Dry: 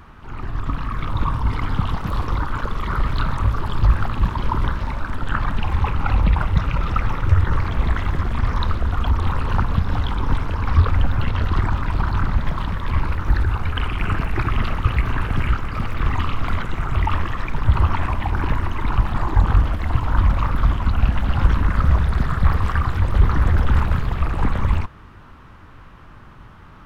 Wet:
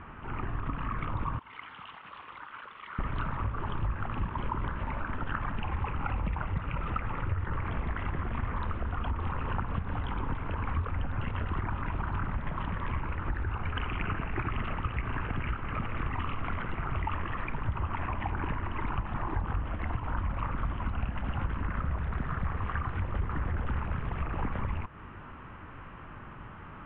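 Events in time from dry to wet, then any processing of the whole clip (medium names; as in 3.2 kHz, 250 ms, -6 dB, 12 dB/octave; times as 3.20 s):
1.39–2.99 s: differentiator
whole clip: steep low-pass 3 kHz 48 dB/octave; bass shelf 82 Hz -6.5 dB; compression 4:1, threshold -30 dBFS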